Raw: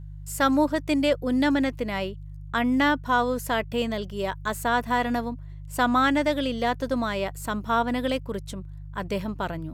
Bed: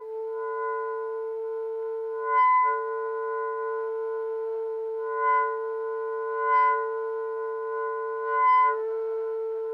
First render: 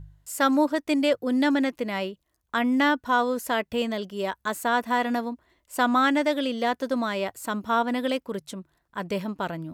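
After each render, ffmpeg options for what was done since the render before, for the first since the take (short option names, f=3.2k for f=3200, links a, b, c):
-af "bandreject=f=50:t=h:w=4,bandreject=f=100:t=h:w=4,bandreject=f=150:t=h:w=4"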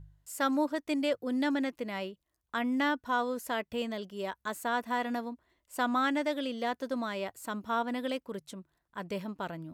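-af "volume=-7.5dB"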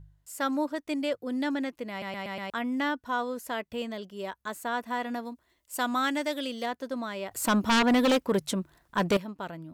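-filter_complex "[0:a]asettb=1/sr,asplit=3[a][b][c];[a]atrim=end=5.254[d];[b]atrim=start=5.25:end=6.66,asetpts=PTS-STARTPTS,afade=t=in:d=0.004:c=qsin,afade=t=out:st=1.406:d=0.004:c=qsin,highshelf=f=3.7k:g=10[e];[c]atrim=start=6.656[f];[d][e]acrossfade=d=0.004:c1=hsin:c2=qsin[g];[g][f]acrossfade=d=0.004:c1=qsin:c2=hsin,asettb=1/sr,asplit=3[h][i][j];[h]atrim=end=7.314[k];[i]atrim=start=7.31:end=9.17,asetpts=PTS-STARTPTS,afade=t=in:d=0.004:c=qsin,afade=t=out:st=1.856:d=0.004:c=qsin,aeval=exprs='0.119*sin(PI/2*3.55*val(0)/0.119)':c=same[l];[j]atrim=start=9.166[m];[k][l]acrossfade=d=0.004:c1=hsin:c2=qsin[n];[n][m]acrossfade=d=0.004:c1=qsin:c2=hsin,asplit=6[o][p][q][r][s][t];[o]atrim=end=2.022[u];[p]atrim=start=1.898:end=2.022[v];[q]atrim=start=1.898:end=2.022[w];[r]atrim=start=1.898:end=2.022[x];[s]atrim=start=1.898:end=2.022[y];[t]atrim=start=2.498[z];[u][v]acrossfade=d=0.004:c1=hsin:c2=hsin[aa];[aa][w]acrossfade=d=0.004:c1=hsin:c2=hsin[ab];[ab][x]acrossfade=d=0.004:c1=hsin:c2=hsin[ac];[ac][y]acrossfade=d=0.004:c1=hsin:c2=hsin[ad];[ad][z]acrossfade=d=0.004:c1=hsin:c2=hsin"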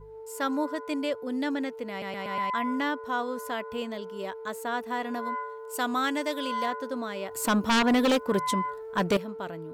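-filter_complex "[1:a]volume=-10.5dB[a];[0:a][a]amix=inputs=2:normalize=0"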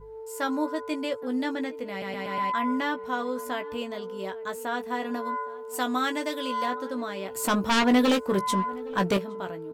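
-filter_complex "[0:a]asplit=2[a][b];[b]adelay=16,volume=-7dB[c];[a][c]amix=inputs=2:normalize=0,asplit=2[d][e];[e]adelay=816.3,volume=-20dB,highshelf=f=4k:g=-18.4[f];[d][f]amix=inputs=2:normalize=0"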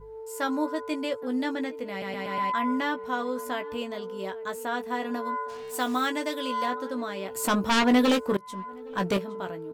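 -filter_complex "[0:a]asplit=3[a][b][c];[a]afade=t=out:st=5.48:d=0.02[d];[b]acrusher=bits=6:mix=0:aa=0.5,afade=t=in:st=5.48:d=0.02,afade=t=out:st=6.06:d=0.02[e];[c]afade=t=in:st=6.06:d=0.02[f];[d][e][f]amix=inputs=3:normalize=0,asplit=2[g][h];[g]atrim=end=8.37,asetpts=PTS-STARTPTS,afade=t=out:st=8.366:d=0.004:c=hsin:silence=0.0707946[i];[h]atrim=start=8.37,asetpts=PTS-STARTPTS,afade=t=in:d=0.92:silence=0.0707946[j];[i][j]concat=n=2:v=0:a=1"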